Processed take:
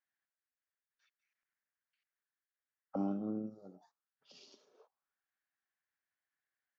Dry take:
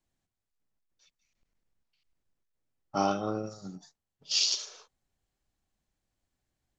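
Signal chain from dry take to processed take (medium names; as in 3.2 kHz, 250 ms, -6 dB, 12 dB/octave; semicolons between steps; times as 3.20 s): auto-wah 240–1700 Hz, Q 3.7, down, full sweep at -33 dBFS; trim +3 dB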